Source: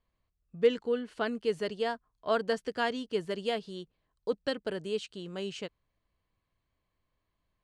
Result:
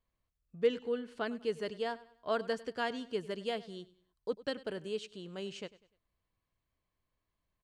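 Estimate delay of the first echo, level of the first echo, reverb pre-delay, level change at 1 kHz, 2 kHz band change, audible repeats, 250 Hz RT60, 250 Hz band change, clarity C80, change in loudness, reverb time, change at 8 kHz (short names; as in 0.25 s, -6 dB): 99 ms, -19.0 dB, none, -4.5 dB, -4.5 dB, 2, none, -4.5 dB, none, -4.5 dB, none, -4.5 dB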